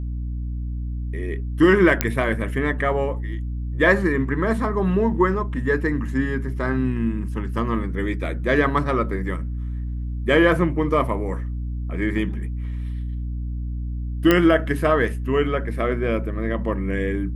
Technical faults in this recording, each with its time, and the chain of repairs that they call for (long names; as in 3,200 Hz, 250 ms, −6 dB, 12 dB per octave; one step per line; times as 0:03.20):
mains hum 60 Hz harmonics 5 −27 dBFS
0:02.01: click −2 dBFS
0:14.31: click −4 dBFS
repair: click removal
hum removal 60 Hz, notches 5